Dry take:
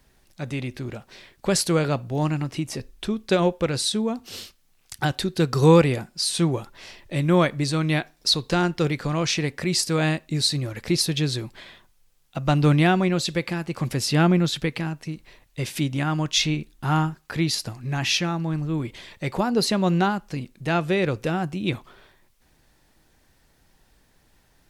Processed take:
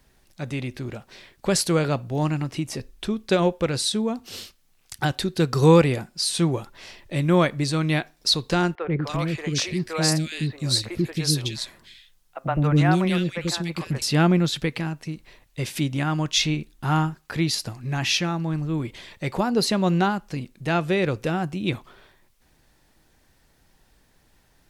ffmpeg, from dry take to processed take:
-filter_complex "[0:a]asettb=1/sr,asplit=3[a][b][c];[a]atrim=end=8.754[d];[b]atrim=start=8.75:end=14.02,asetpts=PTS-STARTPTS,afade=t=in:d=0.004:c=qsin,afade=t=out:st=5.266:d=0.004:c=qsin,acrossover=split=450|2200[e][f][g];[e]adelay=90[h];[g]adelay=290[i];[h][f][i]amix=inputs=3:normalize=0,atrim=end_sample=232407[j];[c]atrim=start=14.016[k];[d][j]acrossfade=d=0.004:c1=hsin:c2=qsin[l];[l][k]acrossfade=d=0.004:c1=qsin:c2=hsin"

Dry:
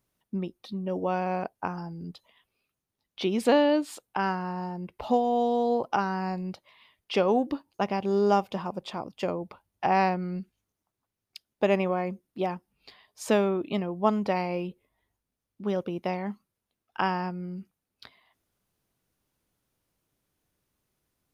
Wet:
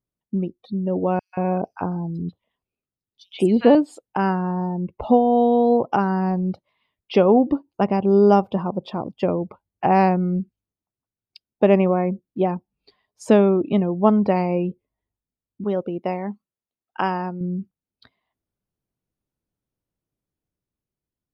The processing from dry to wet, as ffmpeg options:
-filter_complex "[0:a]asettb=1/sr,asplit=3[a][b][c];[a]atrim=end=1.194[d];[b]atrim=start=1.19:end=3.75,asetpts=PTS-STARTPTS,afade=t=in:d=0.004:c=qsin,afade=t=out:st=2.556:d=0.004:c=qsin,acrossover=split=1200|4500[e][f][g];[f]adelay=140[h];[e]adelay=180[i];[i][h][g]amix=inputs=3:normalize=0,atrim=end_sample=112896[j];[c]atrim=start=3.746[k];[d][j]acrossfade=d=0.004:c1=hsin:c2=qsin[l];[l][k]acrossfade=d=0.004:c1=qsin:c2=hsin,asettb=1/sr,asplit=3[m][n][o];[m]atrim=end=15.644[p];[n]atrim=start=15.64:end=17.41,asetpts=PTS-STARTPTS,afade=t=in:d=0.004:c=qsin,afade=t=out:st=1.766:d=0.004:c=qsin,lowshelf=f=260:g=-10.5[q];[o]atrim=start=17.406[r];[p][q]acrossfade=d=0.004:c1=hsin:c2=qsin[s];[s][r]acrossfade=d=0.004:c1=qsin:c2=hsin,afftdn=nr=16:nf=-44,tiltshelf=f=760:g=5.5,dynaudnorm=f=190:g=11:m=3dB,volume=3dB"

